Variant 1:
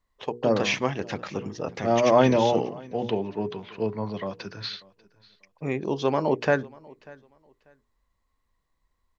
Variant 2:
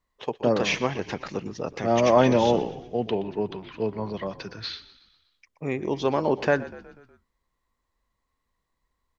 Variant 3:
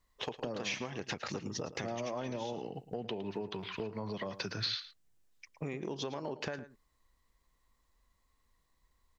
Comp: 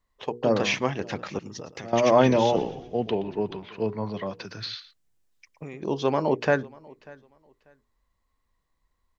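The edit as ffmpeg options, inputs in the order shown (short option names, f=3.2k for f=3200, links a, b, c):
-filter_complex "[2:a]asplit=2[a][b];[0:a]asplit=4[c][d][e][f];[c]atrim=end=1.392[g];[a]atrim=start=1.388:end=1.932[h];[d]atrim=start=1.928:end=2.562[i];[1:a]atrim=start=2.558:end=3.642[j];[e]atrim=start=3.638:end=4.452[k];[b]atrim=start=4.448:end=5.822[l];[f]atrim=start=5.818[m];[g][h]acrossfade=d=0.004:c1=hsin:c2=hsin[n];[n][i]acrossfade=d=0.004:c1=hsin:c2=hsin[o];[o][j]acrossfade=d=0.004:c1=hsin:c2=hsin[p];[p][k]acrossfade=d=0.004:c1=hsin:c2=hsin[q];[q][l]acrossfade=d=0.004:c1=hsin:c2=hsin[r];[r][m]acrossfade=d=0.004:c1=hsin:c2=hsin"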